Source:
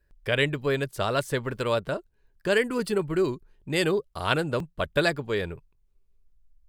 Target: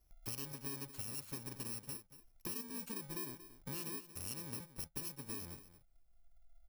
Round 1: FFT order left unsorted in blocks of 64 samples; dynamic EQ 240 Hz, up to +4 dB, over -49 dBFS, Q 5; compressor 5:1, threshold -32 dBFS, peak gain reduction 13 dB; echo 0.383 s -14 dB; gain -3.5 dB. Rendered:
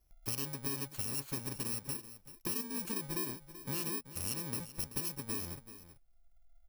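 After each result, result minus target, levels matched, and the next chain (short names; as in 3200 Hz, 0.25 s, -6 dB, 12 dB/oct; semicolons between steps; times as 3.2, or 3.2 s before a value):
echo 0.151 s late; compressor: peak gain reduction -6.5 dB
FFT order left unsorted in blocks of 64 samples; dynamic EQ 240 Hz, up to +4 dB, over -49 dBFS, Q 5; compressor 5:1, threshold -32 dBFS, peak gain reduction 13 dB; echo 0.232 s -14 dB; gain -3.5 dB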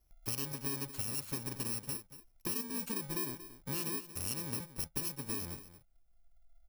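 compressor: peak gain reduction -6.5 dB
FFT order left unsorted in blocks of 64 samples; dynamic EQ 240 Hz, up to +4 dB, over -49 dBFS, Q 5; compressor 5:1, threshold -40 dBFS, peak gain reduction 19.5 dB; echo 0.232 s -14 dB; gain -3.5 dB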